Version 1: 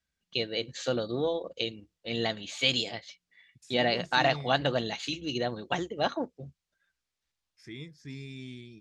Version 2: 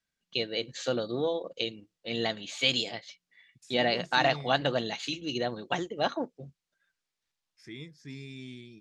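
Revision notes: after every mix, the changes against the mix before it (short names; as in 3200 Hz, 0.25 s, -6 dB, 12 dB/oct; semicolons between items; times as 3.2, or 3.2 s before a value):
master: add bell 65 Hz -14 dB 0.81 oct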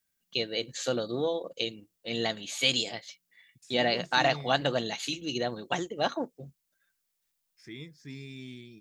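first voice: remove LPF 5400 Hz 12 dB/oct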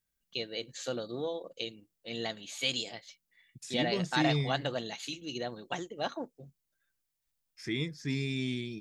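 first voice -6.0 dB; second voice +10.0 dB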